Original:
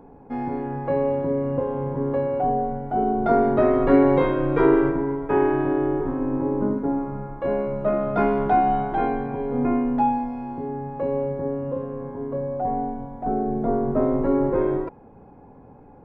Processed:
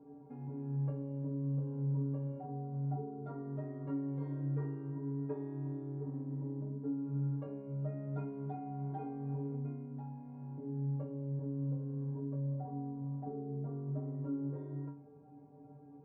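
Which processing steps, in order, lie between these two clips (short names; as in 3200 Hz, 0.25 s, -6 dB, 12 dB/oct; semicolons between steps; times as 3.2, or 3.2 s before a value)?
HPF 97 Hz; tilt shelf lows +9 dB; compressor 6:1, threshold -23 dBFS, peak gain reduction 17 dB; metallic resonator 140 Hz, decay 0.47 s, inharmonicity 0.008; gain -2 dB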